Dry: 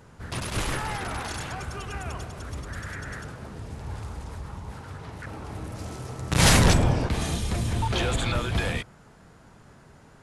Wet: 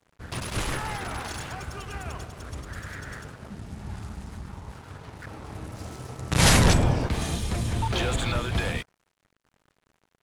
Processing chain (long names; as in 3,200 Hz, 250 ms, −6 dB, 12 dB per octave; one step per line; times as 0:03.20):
0:03.50–0:04.52: thirty-one-band graphic EQ 200 Hz +10 dB, 500 Hz −10 dB, 1,000 Hz −4 dB
dead-zone distortion −46.5 dBFS